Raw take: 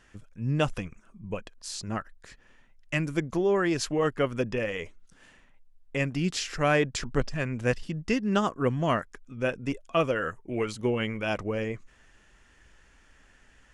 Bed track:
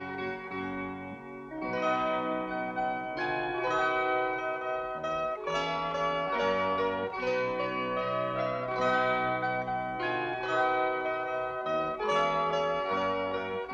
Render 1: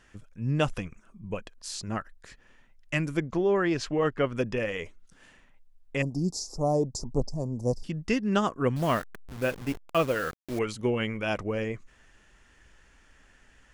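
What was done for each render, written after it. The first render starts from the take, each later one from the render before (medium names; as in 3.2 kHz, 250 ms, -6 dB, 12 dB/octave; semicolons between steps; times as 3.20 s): 3.17–4.34 s: Bessel low-pass 4.4 kHz; 6.02–7.84 s: elliptic band-stop 900–5000 Hz; 8.76–10.59 s: send-on-delta sampling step -36.5 dBFS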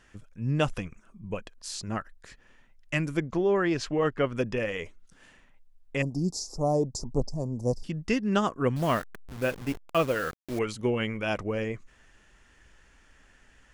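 no audible change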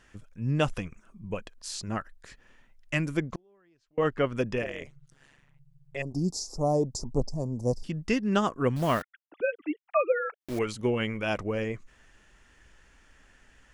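3.35–3.98 s: inverted gate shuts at -27 dBFS, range -38 dB; 4.62–6.14 s: AM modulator 140 Hz, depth 95%; 9.02–10.41 s: formants replaced by sine waves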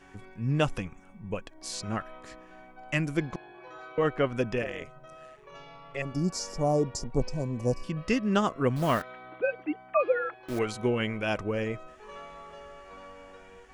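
add bed track -17.5 dB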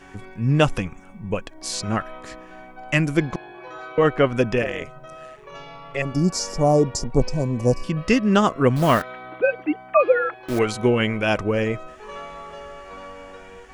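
trim +8.5 dB; peak limiter -3 dBFS, peak gain reduction 1.5 dB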